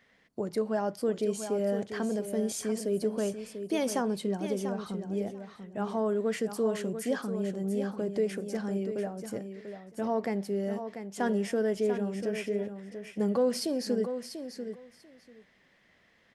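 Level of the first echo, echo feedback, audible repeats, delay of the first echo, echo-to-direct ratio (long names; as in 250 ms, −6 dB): −9.0 dB, 15%, 2, 691 ms, −9.0 dB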